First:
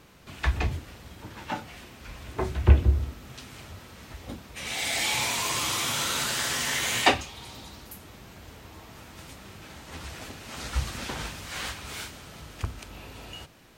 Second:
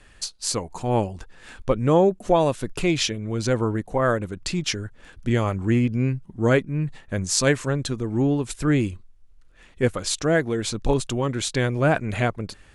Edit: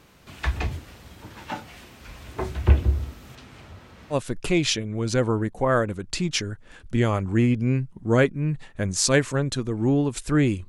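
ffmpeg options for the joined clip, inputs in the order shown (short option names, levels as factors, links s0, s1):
-filter_complex "[0:a]asettb=1/sr,asplit=3[s0][s1][s2];[s0]atrim=end=3.354[s3];[s1]atrim=start=3.35:end=4.16,asetpts=PTS-STARTPTS,afade=t=in:d=0.004:c=qsin,afade=t=out:st=0.806:d=0.004:c=qsin,lowpass=f=2500:p=1[s4];[s2]atrim=start=4.156[s5];[s3][s4]acrossfade=d=0.004:c1=hsin:c2=qsin[s6];[s6][s5]acrossfade=d=0.004:c1=qsin:c2=hsin,apad=whole_dur=10.68,atrim=end=10.68,atrim=end=4.16,asetpts=PTS-STARTPTS[s7];[1:a]atrim=start=2.43:end=9.01,asetpts=PTS-STARTPTS[s8];[s7][s8]acrossfade=d=0.06:c1=tri:c2=tri"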